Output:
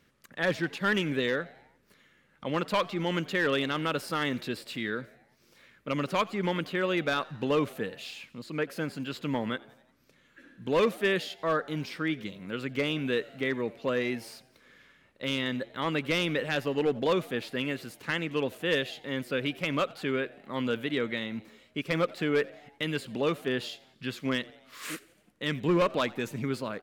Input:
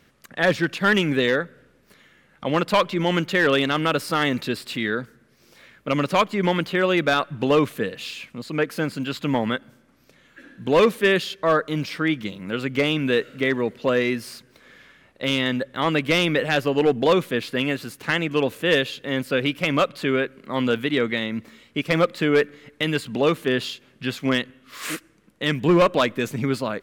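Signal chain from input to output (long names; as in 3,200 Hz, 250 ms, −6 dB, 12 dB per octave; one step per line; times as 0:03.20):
parametric band 720 Hz −4.5 dB 0.25 octaves
echo with shifted repeats 88 ms, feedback 56%, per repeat +100 Hz, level −23 dB
level −8 dB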